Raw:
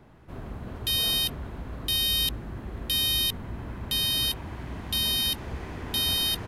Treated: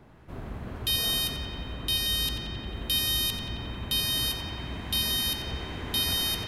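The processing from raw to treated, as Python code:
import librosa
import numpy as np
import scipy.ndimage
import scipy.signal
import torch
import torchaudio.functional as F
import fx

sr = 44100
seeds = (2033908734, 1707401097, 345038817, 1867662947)

p1 = fx.high_shelf(x, sr, hz=12000.0, db=-7.0, at=(1.73, 2.67))
y = p1 + fx.echo_banded(p1, sr, ms=89, feedback_pct=84, hz=2400.0, wet_db=-5.0, dry=0)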